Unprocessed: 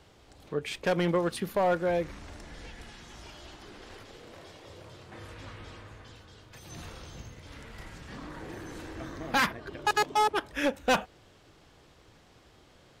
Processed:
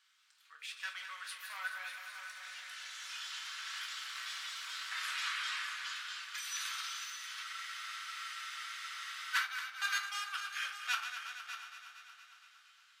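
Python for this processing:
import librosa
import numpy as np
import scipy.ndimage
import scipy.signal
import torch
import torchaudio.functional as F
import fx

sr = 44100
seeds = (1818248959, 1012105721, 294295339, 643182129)

p1 = fx.reverse_delay_fb(x, sr, ms=111, feedback_pct=79, wet_db=-9.5)
p2 = fx.doppler_pass(p1, sr, speed_mps=15, closest_m=12.0, pass_at_s=5.31)
p3 = fx.room_shoebox(p2, sr, seeds[0], volume_m3=160.0, walls='furnished', distance_m=1.1)
p4 = fx.rider(p3, sr, range_db=5, speed_s=2.0)
p5 = scipy.signal.sosfilt(scipy.signal.cheby1(4, 1.0, 1300.0, 'highpass', fs=sr, output='sos'), p4)
p6 = p5 + fx.echo_single(p5, sr, ms=599, db=-11.0, dry=0)
p7 = fx.spec_freeze(p6, sr, seeds[1], at_s=7.46, hold_s=1.89)
y = p7 * 10.0 ** (10.0 / 20.0)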